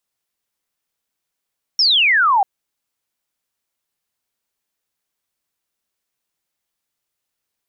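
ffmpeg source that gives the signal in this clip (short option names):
-f lavfi -i "aevalsrc='0.282*clip(t/0.002,0,1)*clip((0.64-t)/0.002,0,1)*sin(2*PI*5600*0.64/log(750/5600)*(exp(log(750/5600)*t/0.64)-1))':d=0.64:s=44100"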